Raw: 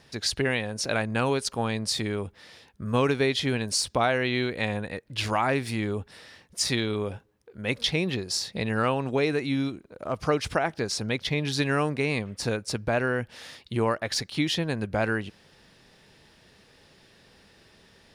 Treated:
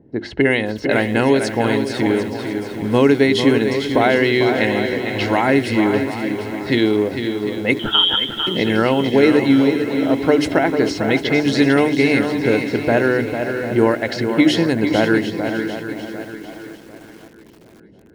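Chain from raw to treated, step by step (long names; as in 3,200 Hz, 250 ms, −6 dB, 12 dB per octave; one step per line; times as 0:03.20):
de-essing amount 60%
low-pass that shuts in the quiet parts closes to 300 Hz, open at −23 dBFS
mains-hum notches 50/100/150/200/250/300/350/400 Hz
in parallel at −1 dB: downward compressor 6 to 1, threshold −42 dBFS, peak gain reduction 21 dB
on the sum: notch comb filter 1,200 Hz
hollow resonant body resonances 310/2,100 Hz, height 10 dB, ringing for 25 ms
on a send: feedback echo with a long and a short gap by turns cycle 748 ms, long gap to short 1.5 to 1, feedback 32%, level −7.5 dB
0:07.79–0:08.47: on the sum: voice inversion scrambler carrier 3,500 Hz
feedback echo at a low word length 525 ms, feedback 55%, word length 7 bits, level −13 dB
level +6.5 dB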